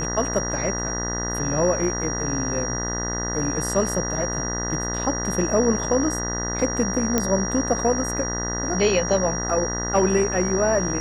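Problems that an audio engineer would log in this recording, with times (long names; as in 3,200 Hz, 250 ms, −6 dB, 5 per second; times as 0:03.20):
mains buzz 60 Hz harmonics 33 −29 dBFS
whistle 5,700 Hz −28 dBFS
0:07.18: click −6 dBFS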